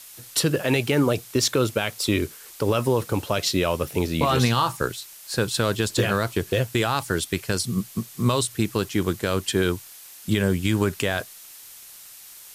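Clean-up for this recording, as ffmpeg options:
ffmpeg -i in.wav -af "adeclick=threshold=4,afftdn=noise_reduction=25:noise_floor=-44" out.wav

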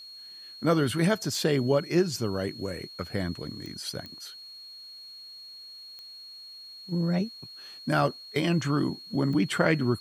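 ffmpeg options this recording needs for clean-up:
ffmpeg -i in.wav -af "adeclick=threshold=4,bandreject=frequency=4300:width=30,agate=range=-21dB:threshold=-38dB" out.wav

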